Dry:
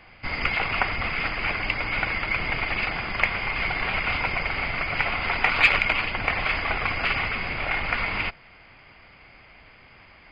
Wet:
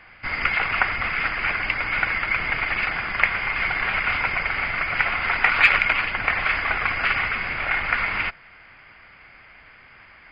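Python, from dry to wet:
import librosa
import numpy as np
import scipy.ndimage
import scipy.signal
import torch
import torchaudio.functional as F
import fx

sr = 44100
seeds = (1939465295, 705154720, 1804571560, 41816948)

y = fx.peak_eq(x, sr, hz=1600.0, db=10.0, octaves=1.1)
y = F.gain(torch.from_numpy(y), -3.0).numpy()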